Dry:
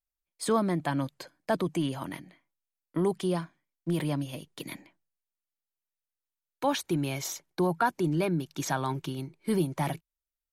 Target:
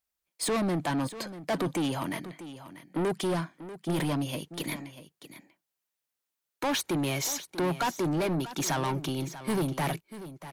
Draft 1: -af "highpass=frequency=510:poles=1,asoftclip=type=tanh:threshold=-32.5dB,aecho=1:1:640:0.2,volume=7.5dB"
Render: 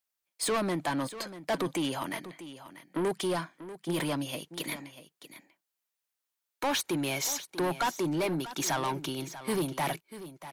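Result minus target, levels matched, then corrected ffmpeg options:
125 Hz band −4.5 dB
-af "highpass=frequency=140:poles=1,asoftclip=type=tanh:threshold=-32.5dB,aecho=1:1:640:0.2,volume=7.5dB"

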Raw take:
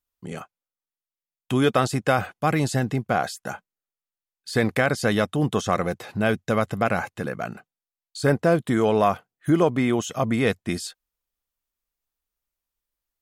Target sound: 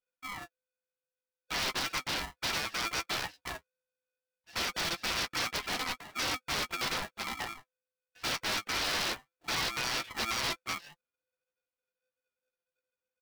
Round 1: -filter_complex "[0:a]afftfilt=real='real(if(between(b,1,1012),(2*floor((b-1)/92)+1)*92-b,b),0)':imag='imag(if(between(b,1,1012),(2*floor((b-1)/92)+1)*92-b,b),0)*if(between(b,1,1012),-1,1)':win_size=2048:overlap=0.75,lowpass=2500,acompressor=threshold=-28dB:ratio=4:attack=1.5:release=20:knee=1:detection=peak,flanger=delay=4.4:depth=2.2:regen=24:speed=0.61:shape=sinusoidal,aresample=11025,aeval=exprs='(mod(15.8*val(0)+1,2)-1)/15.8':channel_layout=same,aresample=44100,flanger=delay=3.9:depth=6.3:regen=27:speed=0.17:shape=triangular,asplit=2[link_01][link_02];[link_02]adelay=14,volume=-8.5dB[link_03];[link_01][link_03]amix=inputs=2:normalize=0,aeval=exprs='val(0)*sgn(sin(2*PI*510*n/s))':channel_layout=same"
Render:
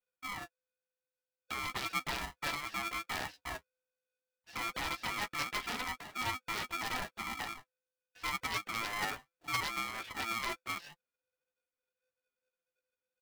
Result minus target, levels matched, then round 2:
downward compressor: peak gain reduction +12 dB
-filter_complex "[0:a]afftfilt=real='real(if(between(b,1,1012),(2*floor((b-1)/92)+1)*92-b,b),0)':imag='imag(if(between(b,1,1012),(2*floor((b-1)/92)+1)*92-b,b),0)*if(between(b,1,1012),-1,1)':win_size=2048:overlap=0.75,lowpass=2500,flanger=delay=4.4:depth=2.2:regen=24:speed=0.61:shape=sinusoidal,aresample=11025,aeval=exprs='(mod(15.8*val(0)+1,2)-1)/15.8':channel_layout=same,aresample=44100,flanger=delay=3.9:depth=6.3:regen=27:speed=0.17:shape=triangular,asplit=2[link_01][link_02];[link_02]adelay=14,volume=-8.5dB[link_03];[link_01][link_03]amix=inputs=2:normalize=0,aeval=exprs='val(0)*sgn(sin(2*PI*510*n/s))':channel_layout=same"

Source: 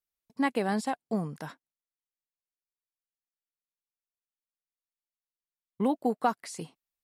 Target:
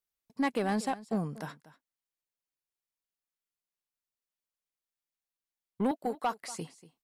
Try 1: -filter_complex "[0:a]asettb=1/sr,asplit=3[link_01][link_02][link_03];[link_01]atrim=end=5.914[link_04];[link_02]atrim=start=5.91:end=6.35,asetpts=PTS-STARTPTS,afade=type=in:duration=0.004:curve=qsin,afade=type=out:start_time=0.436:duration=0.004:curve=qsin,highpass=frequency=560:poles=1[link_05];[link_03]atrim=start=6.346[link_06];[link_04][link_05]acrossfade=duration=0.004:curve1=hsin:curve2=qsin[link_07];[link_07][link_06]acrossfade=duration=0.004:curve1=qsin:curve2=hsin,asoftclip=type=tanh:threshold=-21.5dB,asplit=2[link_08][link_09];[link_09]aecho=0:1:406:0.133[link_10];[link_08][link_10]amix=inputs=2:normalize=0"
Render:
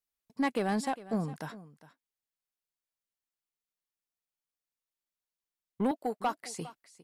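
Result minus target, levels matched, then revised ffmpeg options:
echo 167 ms late
-filter_complex "[0:a]asettb=1/sr,asplit=3[link_01][link_02][link_03];[link_01]atrim=end=5.914[link_04];[link_02]atrim=start=5.91:end=6.35,asetpts=PTS-STARTPTS,afade=type=in:duration=0.004:curve=qsin,afade=type=out:start_time=0.436:duration=0.004:curve=qsin,highpass=frequency=560:poles=1[link_05];[link_03]atrim=start=6.346[link_06];[link_04][link_05]acrossfade=duration=0.004:curve1=hsin:curve2=qsin[link_07];[link_07][link_06]acrossfade=duration=0.004:curve1=qsin:curve2=hsin,asoftclip=type=tanh:threshold=-21.5dB,asplit=2[link_08][link_09];[link_09]aecho=0:1:239:0.133[link_10];[link_08][link_10]amix=inputs=2:normalize=0"

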